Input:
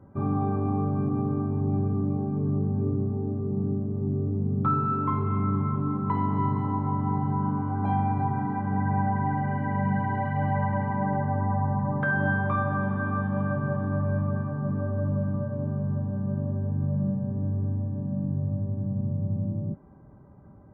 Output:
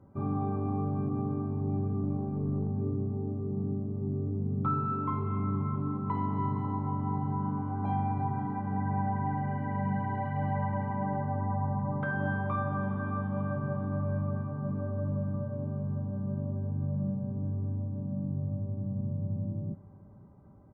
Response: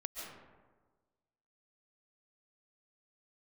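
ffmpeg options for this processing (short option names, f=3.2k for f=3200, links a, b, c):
-filter_complex "[0:a]bandreject=f=1.7k:w=5.2,asettb=1/sr,asplit=3[a][b][c];[a]atrim=end=2.034[d];[b]atrim=start=2.03:end=2.71,asetpts=PTS-STARTPTS,afade=t=in:d=0.004:c=qsin,afade=t=out:st=0.676:d=0.004:c=qsin,aeval=exprs='0.168*(cos(1*acos(clip(val(0)/0.168,-1,1)))-cos(1*PI/2))+0.00841*(cos(4*acos(clip(val(0)/0.168,-1,1)))-cos(4*PI/2))':c=same[e];[c]atrim=start=2.706[f];[d][e]acrossfade=d=0.004:c1=hsin:c2=qsin[g];[g][f]acrossfade=d=0.004:c1=qsin:c2=hsin,asplit=2[h][i];[i]aecho=0:1:543:0.0891[j];[h][j]amix=inputs=2:normalize=0,volume=-5dB"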